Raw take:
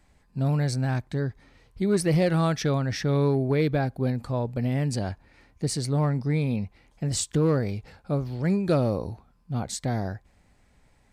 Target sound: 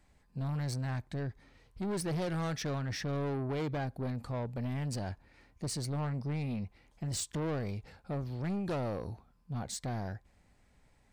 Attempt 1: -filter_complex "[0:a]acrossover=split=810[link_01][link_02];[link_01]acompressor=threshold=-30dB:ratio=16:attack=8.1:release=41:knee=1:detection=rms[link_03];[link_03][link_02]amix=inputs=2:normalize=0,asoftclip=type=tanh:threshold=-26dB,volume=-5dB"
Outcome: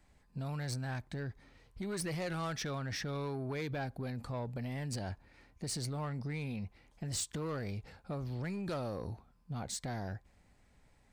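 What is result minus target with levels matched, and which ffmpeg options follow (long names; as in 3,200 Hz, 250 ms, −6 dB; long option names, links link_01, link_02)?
downward compressor: peak gain reduction +12 dB
-af "asoftclip=type=tanh:threshold=-26dB,volume=-5dB"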